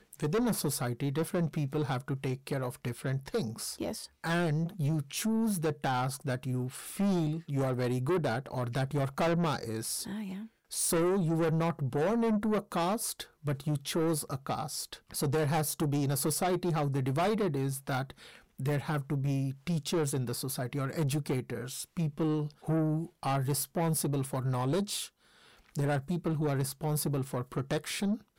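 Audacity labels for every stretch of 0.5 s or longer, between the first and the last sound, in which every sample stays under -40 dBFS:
25.070000	25.750000	silence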